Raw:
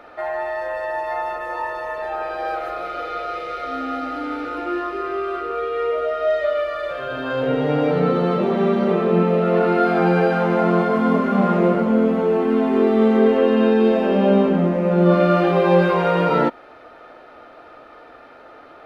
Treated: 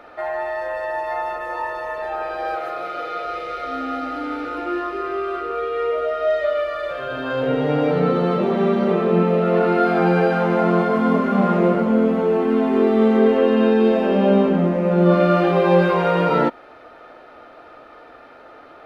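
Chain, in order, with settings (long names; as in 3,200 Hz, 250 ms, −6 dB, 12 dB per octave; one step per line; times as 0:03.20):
0:02.55–0:03.26: high-pass filter 84 Hz 24 dB per octave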